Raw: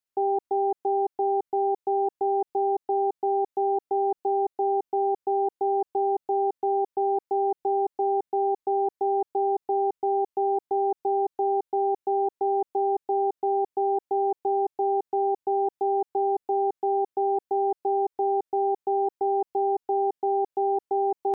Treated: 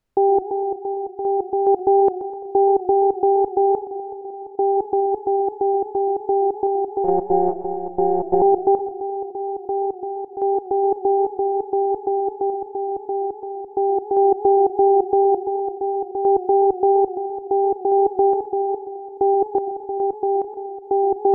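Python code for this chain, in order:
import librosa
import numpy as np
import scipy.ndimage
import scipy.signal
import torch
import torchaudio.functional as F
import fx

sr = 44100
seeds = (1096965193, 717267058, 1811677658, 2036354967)

p1 = fx.tilt_eq(x, sr, slope=-4.0)
p2 = fx.over_compress(p1, sr, threshold_db=-27.0, ratio=-0.5)
p3 = p1 + (p2 * 10.0 ** (-0.5 / 20.0))
p4 = fx.tremolo_random(p3, sr, seeds[0], hz=2.4, depth_pct=90)
p5 = p4 + fx.echo_wet_bandpass(p4, sr, ms=553, feedback_pct=65, hz=410.0, wet_db=-19.0, dry=0)
p6 = fx.lpc_monotone(p5, sr, seeds[1], pitch_hz=180.0, order=16, at=(7.04, 8.42))
p7 = fx.echo_warbled(p6, sr, ms=124, feedback_pct=49, rate_hz=2.8, cents=135, wet_db=-15.5)
y = p7 * 10.0 ** (4.0 / 20.0)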